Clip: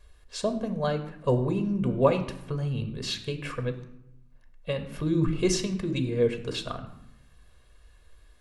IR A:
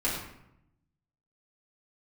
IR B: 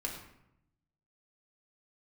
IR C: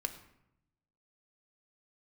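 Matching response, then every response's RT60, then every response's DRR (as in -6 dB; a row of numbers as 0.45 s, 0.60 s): C; 0.80 s, 0.80 s, 0.80 s; -8.0 dB, -1.0 dB, 7.5 dB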